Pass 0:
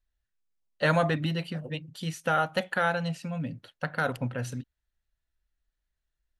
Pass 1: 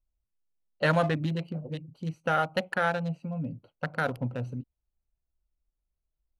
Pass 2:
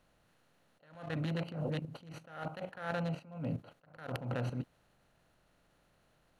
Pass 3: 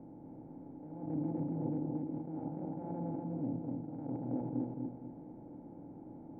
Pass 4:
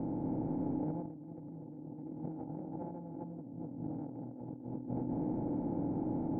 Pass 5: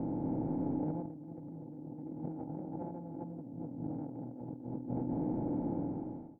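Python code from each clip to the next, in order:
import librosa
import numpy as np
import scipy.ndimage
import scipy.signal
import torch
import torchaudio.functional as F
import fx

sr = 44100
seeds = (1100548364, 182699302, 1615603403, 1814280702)

y1 = fx.wiener(x, sr, points=25)
y2 = fx.bin_compress(y1, sr, power=0.6)
y2 = fx.level_steps(y2, sr, step_db=12)
y2 = fx.attack_slew(y2, sr, db_per_s=100.0)
y2 = y2 * librosa.db_to_amplitude(1.5)
y3 = fx.bin_compress(y2, sr, power=0.4)
y3 = fx.formant_cascade(y3, sr, vowel='u')
y3 = fx.echo_feedback(y3, sr, ms=245, feedback_pct=31, wet_db=-3)
y3 = y3 * librosa.db_to_amplitude(4.5)
y4 = fx.over_compress(y3, sr, threshold_db=-49.0, ratio=-1.0)
y4 = fx.air_absorb(y4, sr, metres=350.0)
y4 = y4 * librosa.db_to_amplitude(8.5)
y5 = fx.fade_out_tail(y4, sr, length_s=0.69)
y5 = y5 * librosa.db_to_amplitude(1.0)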